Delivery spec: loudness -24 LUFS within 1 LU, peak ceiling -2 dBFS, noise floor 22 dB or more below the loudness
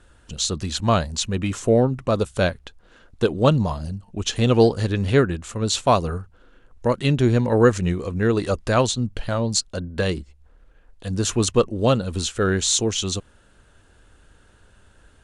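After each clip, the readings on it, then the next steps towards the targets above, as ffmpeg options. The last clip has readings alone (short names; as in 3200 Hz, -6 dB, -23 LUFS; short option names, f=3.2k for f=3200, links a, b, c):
loudness -21.5 LUFS; peak -3.5 dBFS; loudness target -24.0 LUFS
-> -af "volume=-2.5dB"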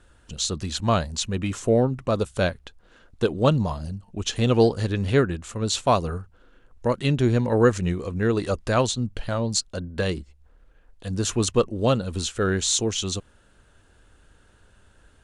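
loudness -24.0 LUFS; peak -6.0 dBFS; noise floor -57 dBFS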